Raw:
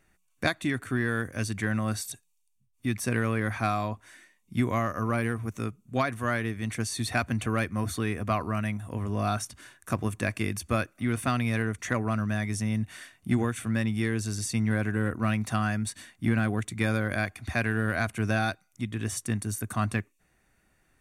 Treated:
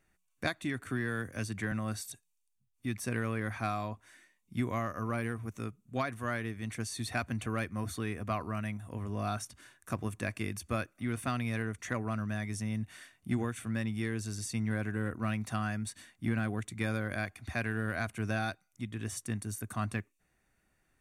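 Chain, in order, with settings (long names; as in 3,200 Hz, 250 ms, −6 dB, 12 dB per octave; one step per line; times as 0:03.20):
0:00.86–0:01.72: multiband upward and downward compressor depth 40%
level −6.5 dB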